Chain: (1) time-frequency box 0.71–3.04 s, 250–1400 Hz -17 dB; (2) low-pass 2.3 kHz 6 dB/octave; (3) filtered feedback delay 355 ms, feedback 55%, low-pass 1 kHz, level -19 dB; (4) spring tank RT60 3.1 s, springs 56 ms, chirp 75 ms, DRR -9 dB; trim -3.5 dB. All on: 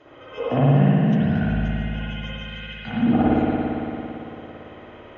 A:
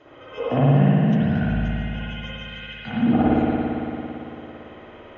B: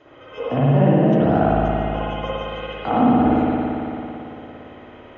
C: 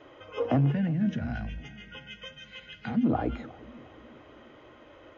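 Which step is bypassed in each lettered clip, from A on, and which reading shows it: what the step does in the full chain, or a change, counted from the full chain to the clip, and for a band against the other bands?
3, momentary loudness spread change -2 LU; 1, 1 kHz band +7.0 dB; 4, momentary loudness spread change -1 LU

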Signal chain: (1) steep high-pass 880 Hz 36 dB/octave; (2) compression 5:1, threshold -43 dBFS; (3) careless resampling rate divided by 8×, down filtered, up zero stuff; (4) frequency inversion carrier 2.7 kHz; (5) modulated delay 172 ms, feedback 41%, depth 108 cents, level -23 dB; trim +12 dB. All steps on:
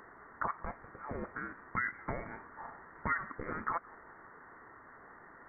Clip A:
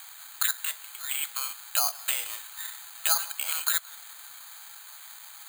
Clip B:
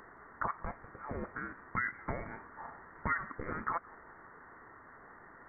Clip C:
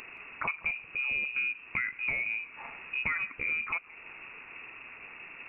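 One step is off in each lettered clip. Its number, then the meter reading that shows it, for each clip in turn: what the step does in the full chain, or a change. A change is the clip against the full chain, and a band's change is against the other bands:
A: 4, crest factor change +9.0 dB; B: 3, 125 Hz band +1.5 dB; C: 1, 2 kHz band +16.5 dB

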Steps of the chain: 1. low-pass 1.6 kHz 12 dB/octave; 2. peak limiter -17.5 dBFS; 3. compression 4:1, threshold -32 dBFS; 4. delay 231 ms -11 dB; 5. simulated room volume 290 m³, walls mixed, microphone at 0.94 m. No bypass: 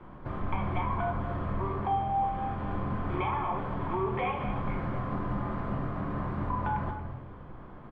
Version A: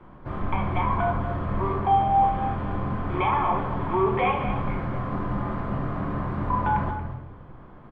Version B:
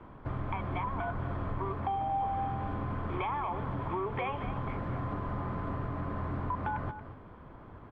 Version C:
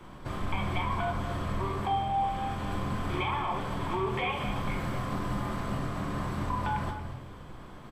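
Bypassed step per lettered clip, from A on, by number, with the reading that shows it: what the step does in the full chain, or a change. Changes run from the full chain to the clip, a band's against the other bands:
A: 3, 1 kHz band +2.0 dB; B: 5, loudness change -2.5 LU; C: 1, 2 kHz band +4.0 dB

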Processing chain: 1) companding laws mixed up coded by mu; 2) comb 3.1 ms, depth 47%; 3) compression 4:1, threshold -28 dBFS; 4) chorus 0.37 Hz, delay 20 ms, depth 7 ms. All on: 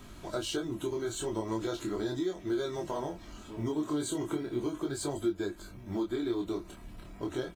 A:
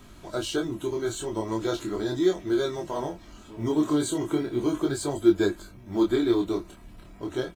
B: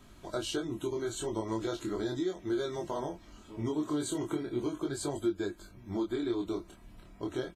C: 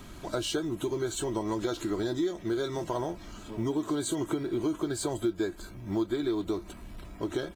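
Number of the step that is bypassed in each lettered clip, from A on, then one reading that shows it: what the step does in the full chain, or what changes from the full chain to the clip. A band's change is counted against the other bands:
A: 3, crest factor change +5.0 dB; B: 1, distortion -24 dB; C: 4, loudness change +3.0 LU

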